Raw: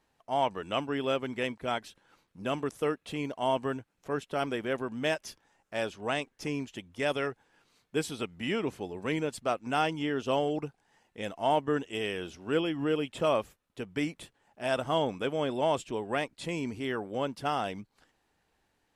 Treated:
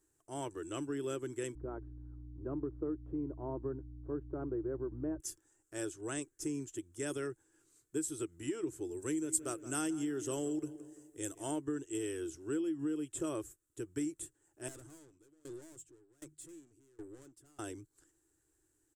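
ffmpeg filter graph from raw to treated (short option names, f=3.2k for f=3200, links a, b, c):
-filter_complex "[0:a]asettb=1/sr,asplit=3[a][b][c];[a]atrim=end=1.554[d];[b]atrim=start=1.55:end=5.2,asetpts=PTS-STARTPTS,afade=t=in:d=0.004:c=qsin,afade=t=out:st=3.646:d=0.004:c=qsin,lowpass=f=1.1k:w=0.5412,lowpass=f=1.1k:w=1.3066,aeval=exprs='val(0)+0.00631*(sin(2*PI*60*n/s)+sin(2*PI*2*60*n/s)/2+sin(2*PI*3*60*n/s)/3+sin(2*PI*4*60*n/s)/4+sin(2*PI*5*60*n/s)/5)':c=same[e];[c]atrim=start=5.196[f];[d][e]acrossfade=d=0.004:c1=hsin:c2=qsin[g];[g][f]acrossfade=d=0.004:c1=qsin:c2=hsin,asettb=1/sr,asplit=3[h][i][j];[h]atrim=end=8.914[k];[i]atrim=start=8.91:end=11.51,asetpts=PTS-STARTPTS,afade=t=in:d=0.004:c=qsin,afade=t=out:st=2.596:d=0.004:c=qsin,highshelf=f=5.1k:g=8.5,asplit=2[l][m];[m]adelay=170,lowpass=f=2.9k:p=1,volume=-16dB,asplit=2[n][o];[o]adelay=170,lowpass=f=2.9k:p=1,volume=0.5,asplit=2[p][q];[q]adelay=170,lowpass=f=2.9k:p=1,volume=0.5,asplit=2[r][s];[s]adelay=170,lowpass=f=2.9k:p=1,volume=0.5[t];[l][n][p][r][t]amix=inputs=5:normalize=0,atrim=end_sample=114660[u];[j]atrim=start=11.506[v];[k][u]acrossfade=d=0.004:c1=hsin:c2=qsin[w];[w][v]acrossfade=d=0.004:c1=qsin:c2=hsin,asettb=1/sr,asplit=3[x][y][z];[x]atrim=end=14.684[aa];[y]atrim=start=14.68:end=17.59,asetpts=PTS-STARTPTS,afade=t=in:d=0.004:c=qsin,afade=t=out:st=2.906:d=0.004:c=qsin,bandreject=f=50:t=h:w=6,bandreject=f=100:t=h:w=6,bandreject=f=150:t=h:w=6,aeval=exprs='(tanh(100*val(0)+0.15)-tanh(0.15))/100':c=same,aeval=exprs='val(0)*pow(10,-26*if(lt(mod(1.3*n/s,1),2*abs(1.3)/1000),1-mod(1.3*n/s,1)/(2*abs(1.3)/1000),(mod(1.3*n/s,1)-2*abs(1.3)/1000)/(1-2*abs(1.3)/1000))/20)':c=same[ab];[z]atrim=start=17.586[ac];[aa][ab]acrossfade=d=0.004:c1=hsin:c2=qsin[ad];[ad][ac]acrossfade=d=0.004:c1=qsin:c2=hsin,firequalizer=gain_entry='entry(140,0);entry(200,-23);entry(320,10);entry(480,-8);entry(740,-16);entry(1500,-7);entry(2200,-17);entry(4500,-15);entry(7600,7);entry(11000,-2)':delay=0.05:min_phase=1,acompressor=threshold=-30dB:ratio=6,highshelf=f=2.6k:g=8.5,volume=-3dB"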